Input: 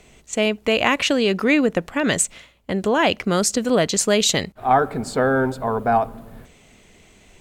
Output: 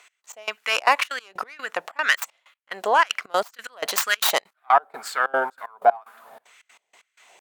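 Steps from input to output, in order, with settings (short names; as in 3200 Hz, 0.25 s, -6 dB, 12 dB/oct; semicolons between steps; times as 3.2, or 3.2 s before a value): tracing distortion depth 0.22 ms; LFO high-pass sine 2 Hz 710–1600 Hz; step gate "x..x..xxxx.xx." 188 bpm -24 dB; tempo 1×; gain -1 dB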